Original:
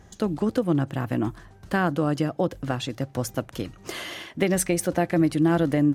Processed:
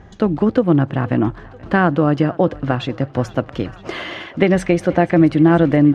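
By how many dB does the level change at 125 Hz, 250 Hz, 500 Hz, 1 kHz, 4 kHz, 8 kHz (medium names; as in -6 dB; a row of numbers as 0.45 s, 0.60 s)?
+8.5 dB, +8.5 dB, +8.5 dB, +8.5 dB, +3.5 dB, under -10 dB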